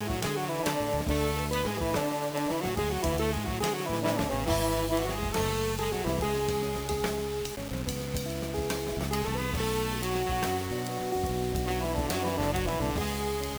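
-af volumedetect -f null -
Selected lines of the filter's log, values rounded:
mean_volume: -29.8 dB
max_volume: -13.6 dB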